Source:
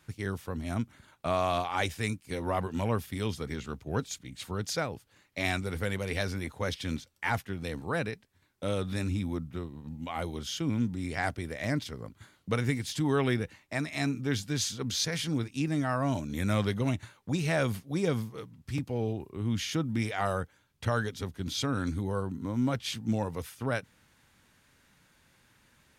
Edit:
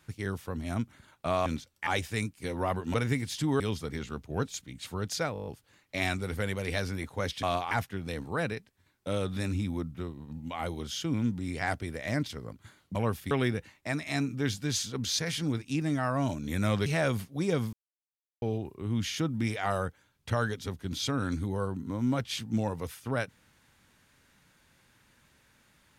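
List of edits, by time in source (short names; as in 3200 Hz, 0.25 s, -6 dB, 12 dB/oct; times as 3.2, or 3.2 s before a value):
1.46–1.74 swap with 6.86–7.27
2.81–3.17 swap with 12.51–13.17
4.9 stutter 0.02 s, 8 plays
16.72–17.41 cut
18.28–18.97 mute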